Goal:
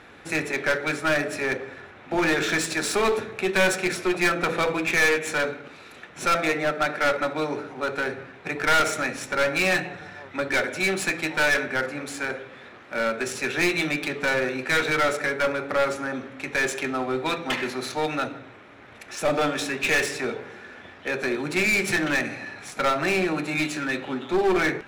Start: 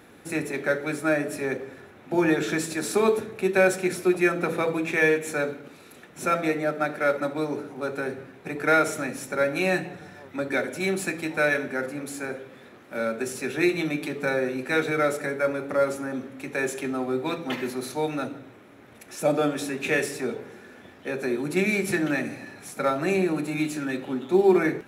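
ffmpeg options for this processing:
ffmpeg -i in.wav -filter_complex "[0:a]equalizer=frequency=230:width=0.36:gain=-11,asplit=2[link_01][link_02];[link_02]aeval=exprs='0.0501*(abs(mod(val(0)/0.0501+3,4)-2)-1)':channel_layout=same,volume=-6dB[link_03];[link_01][link_03]amix=inputs=2:normalize=0,adynamicsmooth=sensitivity=4.5:basefreq=4500,aeval=exprs='clip(val(0),-1,0.0422)':channel_layout=same,volume=6dB" out.wav

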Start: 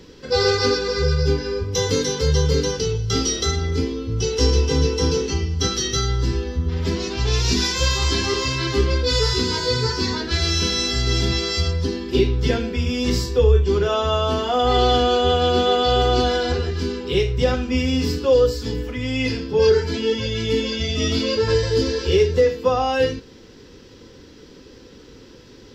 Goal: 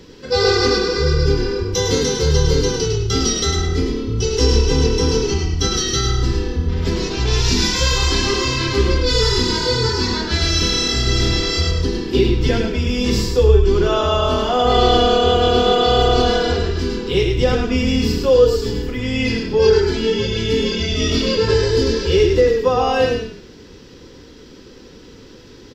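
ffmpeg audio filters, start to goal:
ffmpeg -i in.wav -filter_complex "[0:a]asplit=5[link_01][link_02][link_03][link_04][link_05];[link_02]adelay=104,afreqshift=-36,volume=-5dB[link_06];[link_03]adelay=208,afreqshift=-72,volume=-15.2dB[link_07];[link_04]adelay=312,afreqshift=-108,volume=-25.3dB[link_08];[link_05]adelay=416,afreqshift=-144,volume=-35.5dB[link_09];[link_01][link_06][link_07][link_08][link_09]amix=inputs=5:normalize=0,volume=2dB" out.wav

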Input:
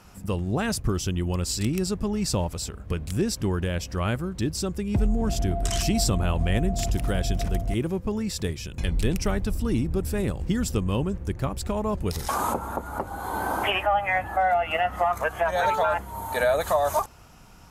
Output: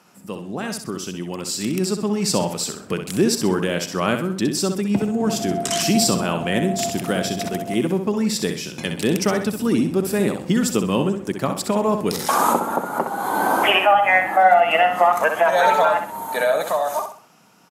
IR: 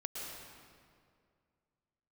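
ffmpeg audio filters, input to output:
-af "dynaudnorm=framelen=220:gausssize=17:maxgain=11dB,highpass=frequency=170:width=0.5412,highpass=frequency=170:width=1.3066,aecho=1:1:64|128|192|256:0.422|0.143|0.0487|0.0166,volume=-1.5dB"

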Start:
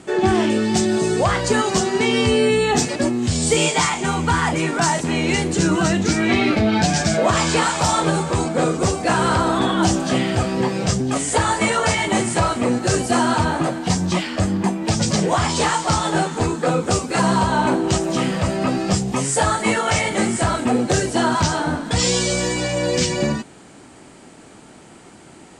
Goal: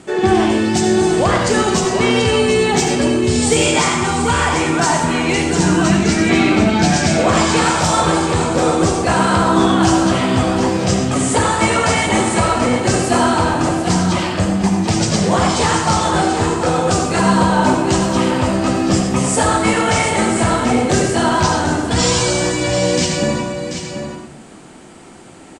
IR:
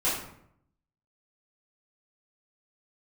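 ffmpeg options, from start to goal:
-filter_complex "[0:a]aecho=1:1:736:0.376,asplit=2[link_01][link_02];[1:a]atrim=start_sample=2205,adelay=64[link_03];[link_02][link_03]afir=irnorm=-1:irlink=0,volume=-13.5dB[link_04];[link_01][link_04]amix=inputs=2:normalize=0,volume=1.5dB"

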